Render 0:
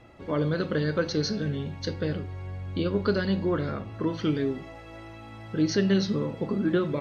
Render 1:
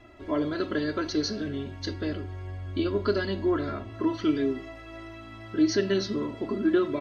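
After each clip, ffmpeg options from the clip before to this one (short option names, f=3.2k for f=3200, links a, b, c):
-af "aecho=1:1:3:0.9,volume=-2.5dB"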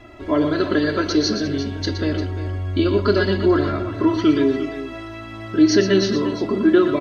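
-af "aecho=1:1:119|349:0.376|0.237,volume=8.5dB"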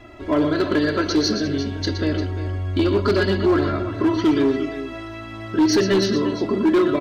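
-af "volume=12.5dB,asoftclip=hard,volume=-12.5dB"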